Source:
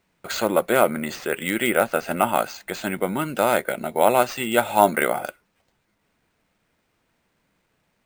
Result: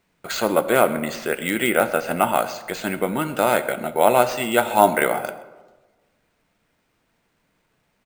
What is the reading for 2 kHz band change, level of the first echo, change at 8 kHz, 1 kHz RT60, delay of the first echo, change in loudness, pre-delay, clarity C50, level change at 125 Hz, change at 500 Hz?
+1.5 dB, −21.5 dB, +1.0 dB, 1.1 s, 129 ms, +1.5 dB, 3 ms, 13.0 dB, +1.5 dB, +1.5 dB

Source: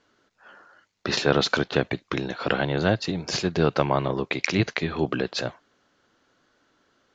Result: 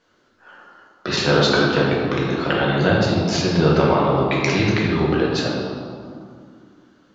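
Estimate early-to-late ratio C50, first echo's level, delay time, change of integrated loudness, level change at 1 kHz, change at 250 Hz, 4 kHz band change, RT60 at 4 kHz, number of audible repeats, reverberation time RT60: 0.0 dB, no echo audible, no echo audible, +6.5 dB, +6.5 dB, +7.5 dB, +5.0 dB, 1.3 s, no echo audible, 2.3 s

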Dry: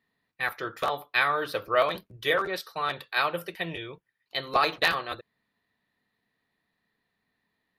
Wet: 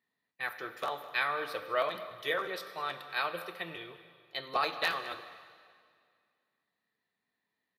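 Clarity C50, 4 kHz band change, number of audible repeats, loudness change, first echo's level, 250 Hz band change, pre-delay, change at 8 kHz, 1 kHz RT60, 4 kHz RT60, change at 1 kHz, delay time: 10.5 dB, −6.5 dB, 1, −7.0 dB, −17.0 dB, −8.5 dB, 5 ms, −6.5 dB, 2.1 s, 1.9 s, −6.5 dB, 206 ms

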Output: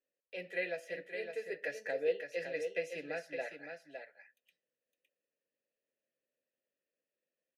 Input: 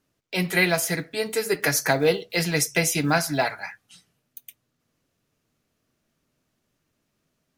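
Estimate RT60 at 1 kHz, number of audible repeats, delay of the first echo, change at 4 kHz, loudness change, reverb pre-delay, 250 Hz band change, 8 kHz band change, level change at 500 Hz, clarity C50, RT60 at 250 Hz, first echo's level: no reverb audible, 1, 561 ms, −24.5 dB, −16.5 dB, no reverb audible, −24.0 dB, −33.5 dB, −11.5 dB, no reverb audible, no reverb audible, −7.0 dB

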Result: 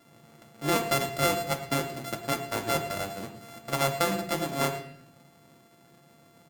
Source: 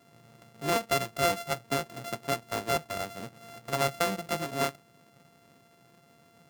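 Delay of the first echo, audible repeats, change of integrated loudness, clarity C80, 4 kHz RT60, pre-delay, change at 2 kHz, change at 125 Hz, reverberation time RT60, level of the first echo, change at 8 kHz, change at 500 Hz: 112 ms, 1, +1.5 dB, 11.5 dB, 0.65 s, 3 ms, +1.5 dB, +4.0 dB, 0.70 s, −15.5 dB, +3.0 dB, +1.5 dB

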